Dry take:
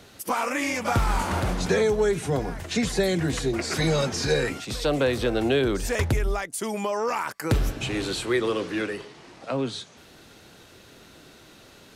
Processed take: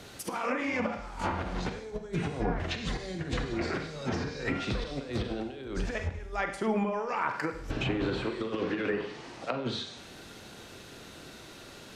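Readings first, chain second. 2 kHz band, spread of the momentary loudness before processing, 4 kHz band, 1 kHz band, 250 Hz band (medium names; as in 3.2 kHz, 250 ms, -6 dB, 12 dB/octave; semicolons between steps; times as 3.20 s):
-5.5 dB, 7 LU, -8.0 dB, -5.0 dB, -5.5 dB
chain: compressor with a negative ratio -29 dBFS, ratio -0.5; Schroeder reverb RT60 0.62 s, combs from 32 ms, DRR 6 dB; low-pass that closes with the level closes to 1.9 kHz, closed at -22 dBFS; trim -3 dB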